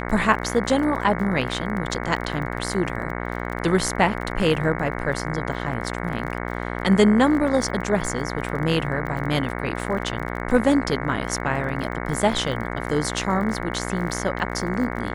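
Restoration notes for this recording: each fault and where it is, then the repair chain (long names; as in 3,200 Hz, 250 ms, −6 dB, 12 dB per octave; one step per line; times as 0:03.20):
mains buzz 60 Hz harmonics 37 −29 dBFS
surface crackle 32 per second −31 dBFS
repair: click removal
hum removal 60 Hz, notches 37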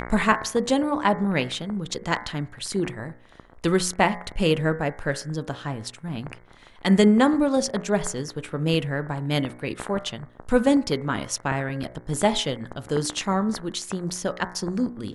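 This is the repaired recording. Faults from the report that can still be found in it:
none of them is left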